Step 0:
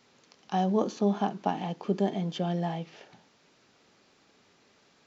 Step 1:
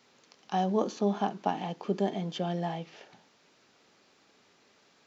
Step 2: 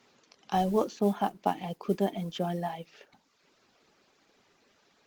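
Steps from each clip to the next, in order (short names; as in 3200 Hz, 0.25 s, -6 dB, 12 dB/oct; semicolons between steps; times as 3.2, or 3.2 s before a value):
low shelf 170 Hz -7 dB
reverb removal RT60 0.89 s; modulation noise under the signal 27 dB; gain +2 dB; Opus 24 kbps 48000 Hz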